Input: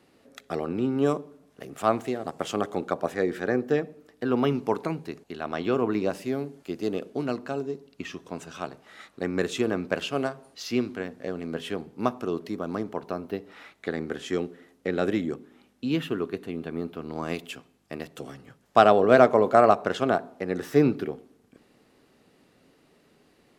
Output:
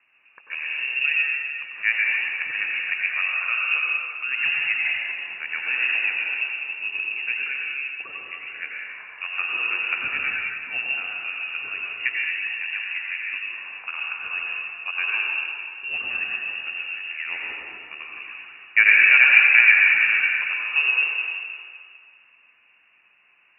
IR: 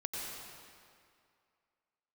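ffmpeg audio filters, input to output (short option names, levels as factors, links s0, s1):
-filter_complex "[0:a]lowshelf=f=340:g=-7,lowpass=f=2600:t=q:w=0.5098,lowpass=f=2600:t=q:w=0.6013,lowpass=f=2600:t=q:w=0.9,lowpass=f=2600:t=q:w=2.563,afreqshift=-3000,highpass=42,equalizer=f=2000:t=o:w=1.5:g=9[s0];[1:a]atrim=start_sample=2205[s1];[s0][s1]afir=irnorm=-1:irlink=0,volume=0.631"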